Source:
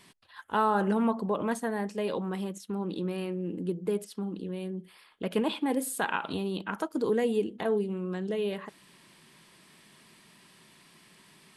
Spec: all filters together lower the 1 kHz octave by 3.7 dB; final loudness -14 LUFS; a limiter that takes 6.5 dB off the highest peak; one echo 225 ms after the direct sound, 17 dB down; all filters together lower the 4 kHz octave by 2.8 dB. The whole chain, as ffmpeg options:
-af "equalizer=f=1000:t=o:g=-4.5,equalizer=f=4000:t=o:g=-3.5,alimiter=limit=0.0708:level=0:latency=1,aecho=1:1:225:0.141,volume=9.44"

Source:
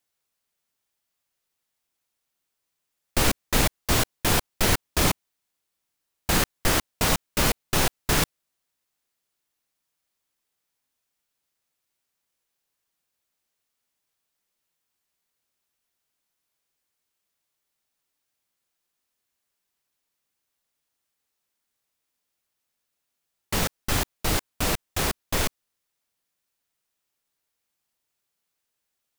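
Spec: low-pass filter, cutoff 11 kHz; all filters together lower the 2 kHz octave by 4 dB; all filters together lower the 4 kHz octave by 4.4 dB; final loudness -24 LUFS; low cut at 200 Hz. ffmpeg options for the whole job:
-af "highpass=200,lowpass=11000,equalizer=f=2000:t=o:g=-4,equalizer=f=4000:t=o:g=-4.5,volume=1.68"

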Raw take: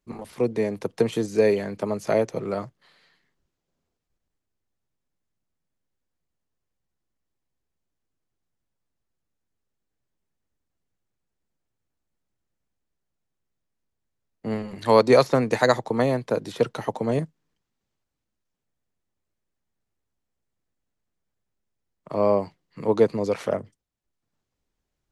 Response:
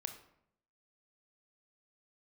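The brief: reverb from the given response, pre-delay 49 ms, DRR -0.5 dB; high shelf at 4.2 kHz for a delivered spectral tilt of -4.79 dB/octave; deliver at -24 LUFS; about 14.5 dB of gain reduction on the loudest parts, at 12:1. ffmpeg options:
-filter_complex "[0:a]highshelf=f=4200:g=-7,acompressor=threshold=0.0501:ratio=12,asplit=2[s0][s1];[1:a]atrim=start_sample=2205,adelay=49[s2];[s1][s2]afir=irnorm=-1:irlink=0,volume=1.33[s3];[s0][s3]amix=inputs=2:normalize=0,volume=1.88"

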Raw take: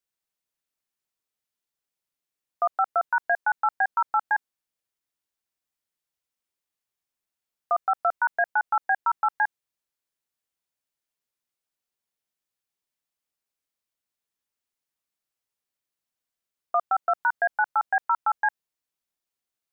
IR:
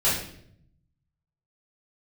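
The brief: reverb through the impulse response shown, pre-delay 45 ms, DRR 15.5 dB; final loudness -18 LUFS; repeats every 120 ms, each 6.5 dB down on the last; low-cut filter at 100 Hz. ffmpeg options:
-filter_complex "[0:a]highpass=100,aecho=1:1:120|240|360|480|600|720:0.473|0.222|0.105|0.0491|0.0231|0.0109,asplit=2[s0][s1];[1:a]atrim=start_sample=2205,adelay=45[s2];[s1][s2]afir=irnorm=-1:irlink=0,volume=0.0355[s3];[s0][s3]amix=inputs=2:normalize=0,volume=2.24"

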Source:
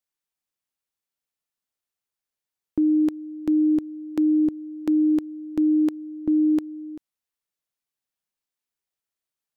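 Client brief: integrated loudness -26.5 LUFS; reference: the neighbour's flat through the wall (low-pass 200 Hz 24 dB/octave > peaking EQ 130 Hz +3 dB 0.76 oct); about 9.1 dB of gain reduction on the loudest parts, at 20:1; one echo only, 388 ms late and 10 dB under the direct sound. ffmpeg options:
-af "acompressor=threshold=0.0501:ratio=20,lowpass=f=200:w=0.5412,lowpass=f=200:w=1.3066,equalizer=f=130:t=o:w=0.76:g=3,aecho=1:1:388:0.316,volume=7.94"

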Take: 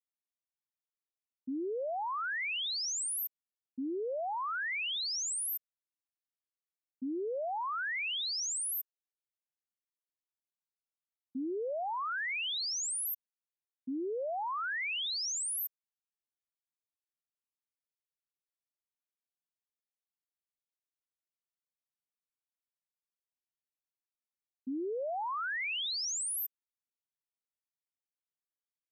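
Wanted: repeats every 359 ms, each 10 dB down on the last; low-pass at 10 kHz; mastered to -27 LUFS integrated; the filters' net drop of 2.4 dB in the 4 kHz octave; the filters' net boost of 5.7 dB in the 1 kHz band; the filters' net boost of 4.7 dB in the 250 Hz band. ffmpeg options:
-af "lowpass=10000,equalizer=f=250:t=o:g=5.5,equalizer=f=1000:t=o:g=7,equalizer=f=4000:t=o:g=-3.5,aecho=1:1:359|718|1077|1436:0.316|0.101|0.0324|0.0104,volume=2"

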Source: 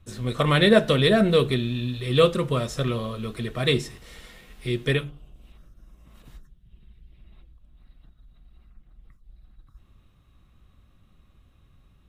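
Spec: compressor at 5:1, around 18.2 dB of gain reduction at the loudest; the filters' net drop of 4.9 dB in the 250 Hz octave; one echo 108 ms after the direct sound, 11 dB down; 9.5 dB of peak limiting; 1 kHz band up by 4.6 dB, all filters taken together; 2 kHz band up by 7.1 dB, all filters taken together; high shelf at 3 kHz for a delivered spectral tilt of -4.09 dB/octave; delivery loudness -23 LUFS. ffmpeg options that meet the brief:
-af "equalizer=f=250:t=o:g=-7.5,equalizer=f=1000:t=o:g=3.5,equalizer=f=2000:t=o:g=5.5,highshelf=f=3000:g=6.5,acompressor=threshold=0.0251:ratio=5,alimiter=level_in=1.41:limit=0.0631:level=0:latency=1,volume=0.708,aecho=1:1:108:0.282,volume=5.31"

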